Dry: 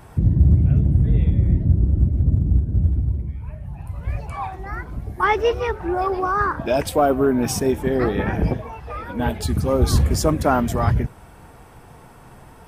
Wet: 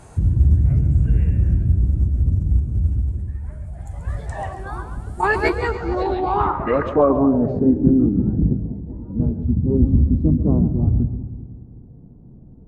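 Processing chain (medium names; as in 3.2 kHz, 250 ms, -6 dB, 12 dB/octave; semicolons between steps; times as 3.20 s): two-band feedback delay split 400 Hz, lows 192 ms, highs 135 ms, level -10 dB; low-pass sweep 12 kHz -> 290 Hz, 5.52–8.11 s; formant shift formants -4 st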